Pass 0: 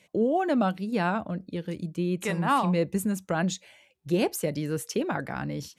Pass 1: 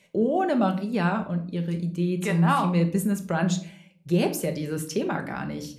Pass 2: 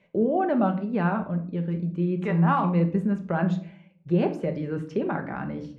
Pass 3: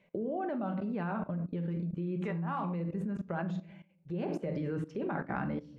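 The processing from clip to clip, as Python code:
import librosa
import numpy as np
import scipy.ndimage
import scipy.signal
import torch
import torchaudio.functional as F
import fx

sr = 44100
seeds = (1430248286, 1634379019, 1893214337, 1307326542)

y1 = fx.room_shoebox(x, sr, seeds[0], volume_m3=530.0, walls='furnished', distance_m=1.2)
y2 = scipy.signal.sosfilt(scipy.signal.butter(2, 1800.0, 'lowpass', fs=sr, output='sos'), y1)
y3 = fx.level_steps(y2, sr, step_db=17)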